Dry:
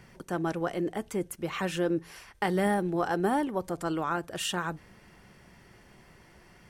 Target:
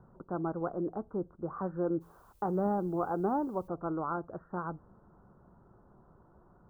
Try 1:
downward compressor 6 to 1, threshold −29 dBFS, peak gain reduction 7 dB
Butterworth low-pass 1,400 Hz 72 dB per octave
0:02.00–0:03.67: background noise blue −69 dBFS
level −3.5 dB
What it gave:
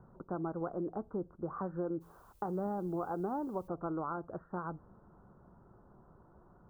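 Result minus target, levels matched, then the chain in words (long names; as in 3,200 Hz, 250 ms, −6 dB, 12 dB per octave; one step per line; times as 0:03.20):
downward compressor: peak gain reduction +7 dB
Butterworth low-pass 1,400 Hz 72 dB per octave
0:02.00–0:03.67: background noise blue −69 dBFS
level −3.5 dB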